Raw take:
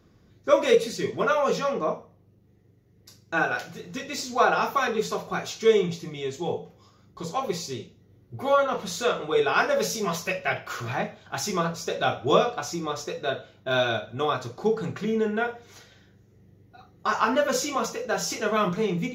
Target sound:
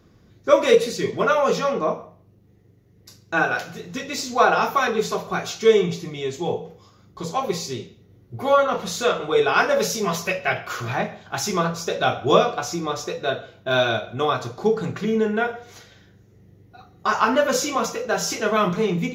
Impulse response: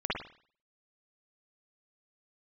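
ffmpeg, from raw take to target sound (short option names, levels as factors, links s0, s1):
-filter_complex "[0:a]asplit=2[s0][s1];[1:a]atrim=start_sample=2205,asetrate=52920,aresample=44100,adelay=77[s2];[s1][s2]afir=irnorm=-1:irlink=0,volume=0.0531[s3];[s0][s3]amix=inputs=2:normalize=0,volume=1.58"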